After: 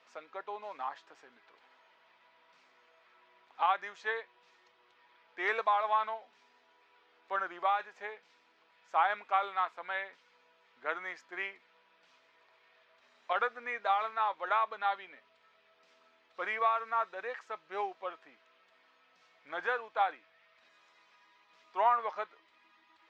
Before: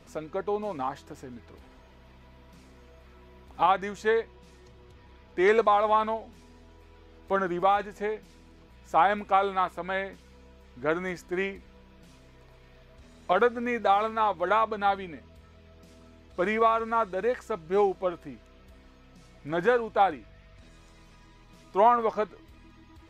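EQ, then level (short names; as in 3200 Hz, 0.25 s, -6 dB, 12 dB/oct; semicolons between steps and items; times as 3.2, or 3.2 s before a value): HPF 980 Hz 12 dB/oct; air absorption 170 m; -1.5 dB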